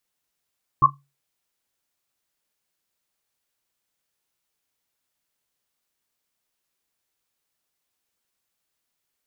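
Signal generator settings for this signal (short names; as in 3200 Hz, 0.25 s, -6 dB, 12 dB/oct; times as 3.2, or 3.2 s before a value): Risset drum, pitch 140 Hz, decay 0.31 s, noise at 1100 Hz, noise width 100 Hz, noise 80%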